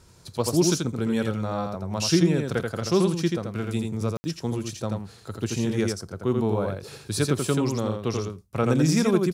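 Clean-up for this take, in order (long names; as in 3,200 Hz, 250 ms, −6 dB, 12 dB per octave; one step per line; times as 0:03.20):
ambience match 0:04.17–0:04.24
echo removal 84 ms −4 dB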